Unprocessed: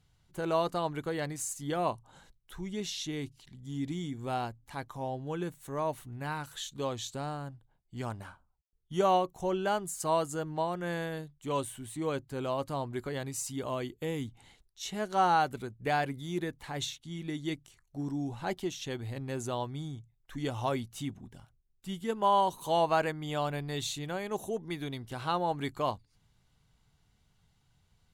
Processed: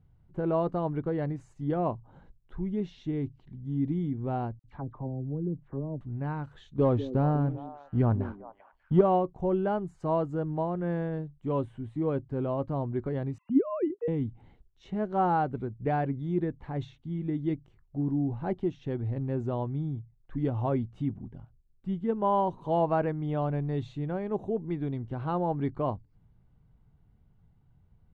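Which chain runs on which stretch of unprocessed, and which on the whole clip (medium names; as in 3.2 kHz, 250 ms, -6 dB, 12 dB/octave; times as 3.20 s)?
4.59–6.01 s: low-pass that closes with the level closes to 320 Hz, closed at -33.5 dBFS + phase dispersion lows, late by 50 ms, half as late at 1.8 kHz
6.78–9.01 s: distance through air 92 m + waveshaping leveller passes 2 + repeats whose band climbs or falls 197 ms, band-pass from 310 Hz, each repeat 1.4 oct, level -8 dB
13.38–14.08 s: formants replaced by sine waves + bass shelf 320 Hz +8.5 dB
whole clip: low-pass 2.1 kHz 12 dB/octave; tilt shelf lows +8 dB, about 740 Hz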